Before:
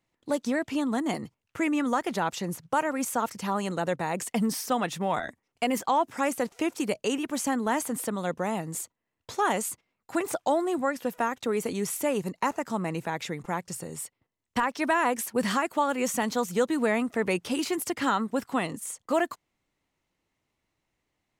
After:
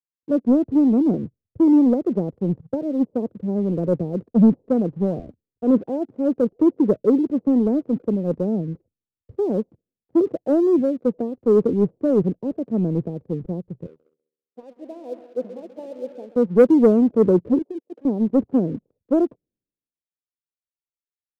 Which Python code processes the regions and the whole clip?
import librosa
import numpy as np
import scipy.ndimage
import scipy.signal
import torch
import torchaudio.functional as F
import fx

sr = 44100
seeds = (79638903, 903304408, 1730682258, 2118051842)

y = fx.chain(x, sr, fx.highpass(hz=580.0, slope=12),
    fx.echo_heads(ms=66, heads='second and third', feedback_pct=52, wet_db=-11.5), at=(13.86, 16.36))
y = fx.chain(y, sr, fx.highpass(hz=570.0, slope=12),
    fx.high_shelf(hz=5600.0, db=10.0),
    fx.over_compress(threshold_db=-34.0, ratio=-0.5), at=(17.58, 18.05))
y = scipy.signal.sosfilt(scipy.signal.butter(6, 520.0, 'lowpass', fs=sr, output='sos'), y)
y = fx.leveller(y, sr, passes=1)
y = fx.band_widen(y, sr, depth_pct=100)
y = F.gain(torch.from_numpy(y), 8.5).numpy()